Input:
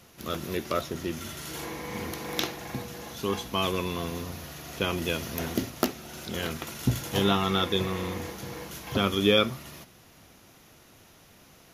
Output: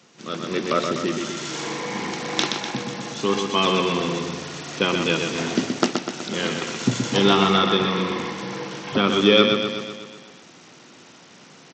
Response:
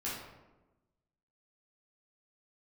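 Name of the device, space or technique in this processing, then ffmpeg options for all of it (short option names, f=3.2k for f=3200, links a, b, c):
Bluetooth headset: -filter_complex "[0:a]asettb=1/sr,asplit=3[a][b][c];[a]atrim=end=7.574[d];[b]atrim=start=7.57:end=9.08,asetpts=PTS-STARTPTS,afade=t=in:d=0.004:c=qsin,afade=t=out:st=1.506:d=0.004:c=qsin,acrossover=split=4000[e][f];[f]acompressor=threshold=-47dB:ratio=4:attack=1:release=60[g];[e][g]amix=inputs=2:normalize=0[h];[c]atrim=start=9.076[i];[d][h]acrossfade=d=0.004:c1=hsin:c2=qsin[j];[j][i]acrossfade=d=0.004:c1=qsin:c2=hsin,highpass=f=150:w=0.5412,highpass=f=150:w=1.3066,equalizer=f=660:w=5:g=-4,aecho=1:1:124|248|372|496|620|744|868|992:0.531|0.303|0.172|0.0983|0.056|0.0319|0.0182|0.0104,dynaudnorm=f=140:g=7:m=6dB,aresample=16000,aresample=44100,volume=1.5dB" -ar 32000 -c:a sbc -b:a 64k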